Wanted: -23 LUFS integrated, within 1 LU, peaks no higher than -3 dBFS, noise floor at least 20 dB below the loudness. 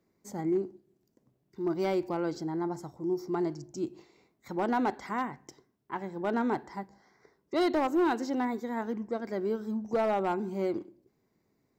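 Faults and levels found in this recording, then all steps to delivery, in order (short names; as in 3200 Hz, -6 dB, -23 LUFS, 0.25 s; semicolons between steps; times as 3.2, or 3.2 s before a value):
clipped 0.8%; flat tops at -21.5 dBFS; loudness -32.0 LUFS; peak -21.5 dBFS; loudness target -23.0 LUFS
-> clip repair -21.5 dBFS; gain +9 dB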